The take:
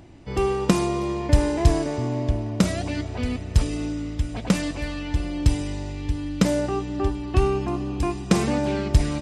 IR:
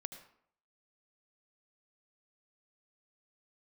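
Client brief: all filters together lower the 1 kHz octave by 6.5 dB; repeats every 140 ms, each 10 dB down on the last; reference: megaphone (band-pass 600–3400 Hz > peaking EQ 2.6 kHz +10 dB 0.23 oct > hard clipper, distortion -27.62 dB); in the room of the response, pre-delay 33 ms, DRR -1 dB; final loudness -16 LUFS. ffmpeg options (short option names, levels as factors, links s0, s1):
-filter_complex "[0:a]equalizer=f=1000:t=o:g=-7.5,aecho=1:1:140|280|420|560:0.316|0.101|0.0324|0.0104,asplit=2[s0][s1];[1:a]atrim=start_sample=2205,adelay=33[s2];[s1][s2]afir=irnorm=-1:irlink=0,volume=1.58[s3];[s0][s3]amix=inputs=2:normalize=0,highpass=600,lowpass=3400,equalizer=f=2600:t=o:w=0.23:g=10,asoftclip=type=hard:threshold=0.15,volume=5.31"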